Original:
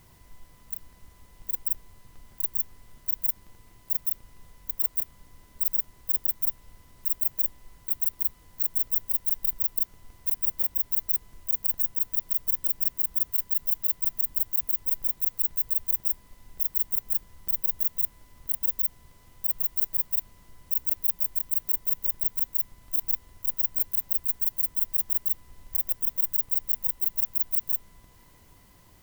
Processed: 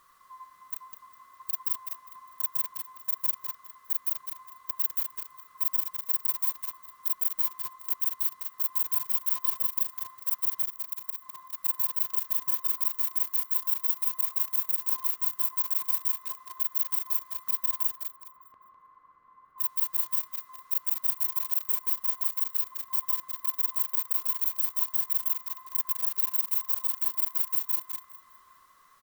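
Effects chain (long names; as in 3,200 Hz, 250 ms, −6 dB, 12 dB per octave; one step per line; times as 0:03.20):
neighbouring bands swapped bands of 1,000 Hz
0:10.64–0:11.58: volume swells 151 ms
0:17.95–0:19.58: low-pass filter 1,200 Hz 12 dB per octave
on a send: repeating echo 203 ms, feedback 36%, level −8 dB
on the sum: convolution reverb RT60 3.4 s, pre-delay 38 ms, DRR 8 dB
in parallel at −4 dB: bit reduction 5 bits
on the sum: level −6 dB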